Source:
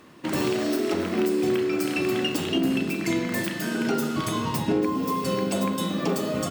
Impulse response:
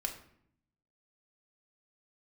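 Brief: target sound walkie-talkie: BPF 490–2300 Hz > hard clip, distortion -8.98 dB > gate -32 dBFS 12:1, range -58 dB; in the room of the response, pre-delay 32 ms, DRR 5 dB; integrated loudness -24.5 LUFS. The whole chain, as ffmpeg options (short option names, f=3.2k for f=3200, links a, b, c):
-filter_complex "[0:a]asplit=2[a][b];[1:a]atrim=start_sample=2205,adelay=32[c];[b][c]afir=irnorm=-1:irlink=0,volume=-6.5dB[d];[a][d]amix=inputs=2:normalize=0,highpass=490,lowpass=2.3k,asoftclip=type=hard:threshold=-31dB,agate=range=-58dB:threshold=-32dB:ratio=12,volume=16dB"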